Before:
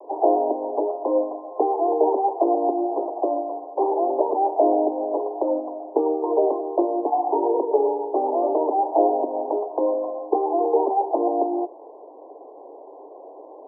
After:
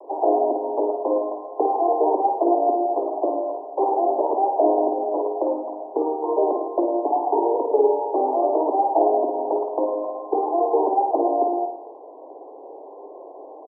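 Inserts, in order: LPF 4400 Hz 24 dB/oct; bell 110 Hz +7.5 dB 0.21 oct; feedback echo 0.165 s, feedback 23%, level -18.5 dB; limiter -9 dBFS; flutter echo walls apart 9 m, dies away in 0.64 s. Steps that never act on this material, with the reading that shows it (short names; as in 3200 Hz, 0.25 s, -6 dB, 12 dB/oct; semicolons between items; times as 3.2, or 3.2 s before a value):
LPF 4400 Hz: input band ends at 1100 Hz; bell 110 Hz: input band starts at 240 Hz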